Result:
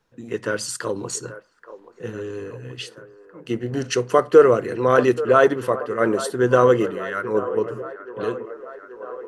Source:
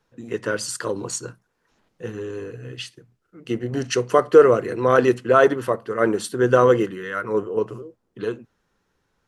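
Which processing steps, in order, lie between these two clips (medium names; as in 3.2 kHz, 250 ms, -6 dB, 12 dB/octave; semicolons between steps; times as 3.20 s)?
feedback echo behind a band-pass 830 ms, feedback 67%, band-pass 810 Hz, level -13 dB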